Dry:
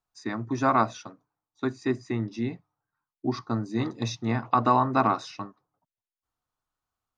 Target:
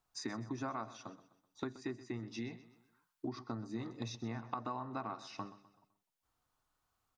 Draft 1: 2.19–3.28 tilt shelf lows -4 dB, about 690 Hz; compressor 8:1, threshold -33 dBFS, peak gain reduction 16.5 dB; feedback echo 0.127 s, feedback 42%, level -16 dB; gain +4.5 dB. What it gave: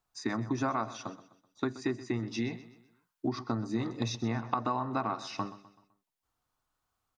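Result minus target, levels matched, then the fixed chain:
compressor: peak gain reduction -9 dB
2.19–3.28 tilt shelf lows -4 dB, about 690 Hz; compressor 8:1, threshold -43.5 dBFS, peak gain reduction 25.5 dB; feedback echo 0.127 s, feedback 42%, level -16 dB; gain +4.5 dB

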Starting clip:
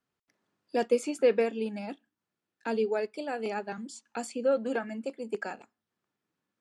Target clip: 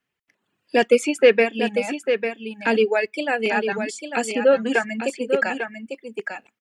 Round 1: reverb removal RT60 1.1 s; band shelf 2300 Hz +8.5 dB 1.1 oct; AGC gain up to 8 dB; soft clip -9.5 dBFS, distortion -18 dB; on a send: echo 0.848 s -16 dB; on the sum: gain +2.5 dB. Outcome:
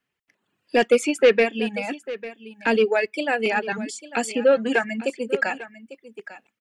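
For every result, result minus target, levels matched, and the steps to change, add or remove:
soft clip: distortion +10 dB; echo-to-direct -8.5 dB
change: soft clip -3 dBFS, distortion -28 dB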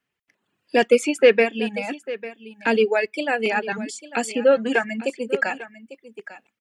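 echo-to-direct -8.5 dB
change: echo 0.848 s -7.5 dB

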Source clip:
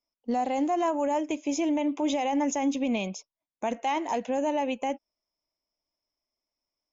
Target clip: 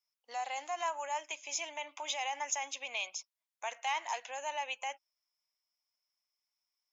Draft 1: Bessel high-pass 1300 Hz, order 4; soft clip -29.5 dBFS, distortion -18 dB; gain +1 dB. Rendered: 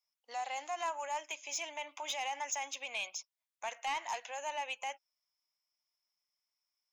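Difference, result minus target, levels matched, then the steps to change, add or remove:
soft clip: distortion +17 dB
change: soft clip -18.5 dBFS, distortion -35 dB

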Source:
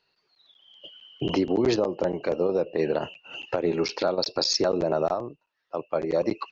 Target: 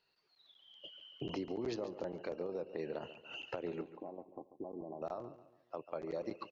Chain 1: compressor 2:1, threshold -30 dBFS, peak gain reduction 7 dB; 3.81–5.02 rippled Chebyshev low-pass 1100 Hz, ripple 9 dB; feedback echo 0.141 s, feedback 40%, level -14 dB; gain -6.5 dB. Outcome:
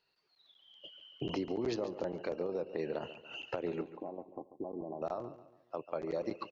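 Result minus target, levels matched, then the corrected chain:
compressor: peak gain reduction -4 dB
compressor 2:1, threshold -38 dBFS, peak gain reduction 11 dB; 3.81–5.02 rippled Chebyshev low-pass 1100 Hz, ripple 9 dB; feedback echo 0.141 s, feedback 40%, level -14 dB; gain -6.5 dB

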